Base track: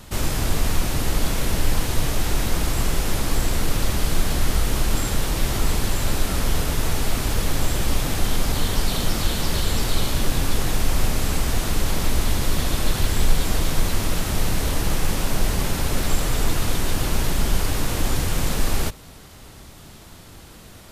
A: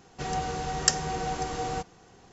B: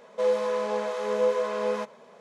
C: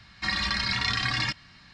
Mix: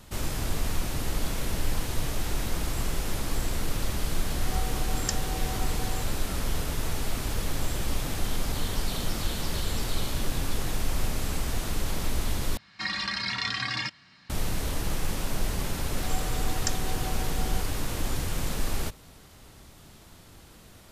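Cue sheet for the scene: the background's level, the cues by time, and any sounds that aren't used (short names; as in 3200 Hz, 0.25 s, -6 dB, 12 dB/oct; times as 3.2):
base track -7.5 dB
4.21 add A -8.5 dB
12.57 replace with C -3 dB + HPF 130 Hz
15.79 add A -8.5 dB
not used: B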